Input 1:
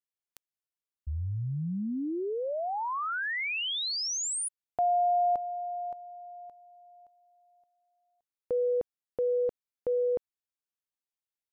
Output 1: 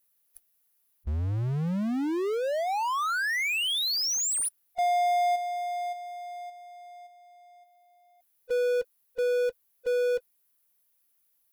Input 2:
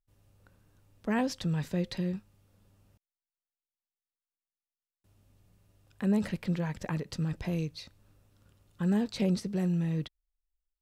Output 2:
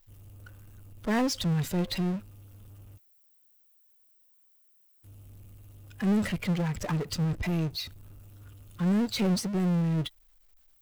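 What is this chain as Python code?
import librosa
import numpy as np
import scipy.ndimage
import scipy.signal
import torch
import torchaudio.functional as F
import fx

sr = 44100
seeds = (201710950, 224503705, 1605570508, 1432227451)

y = fx.bin_expand(x, sr, power=1.5)
y = fx.power_curve(y, sr, exponent=0.5)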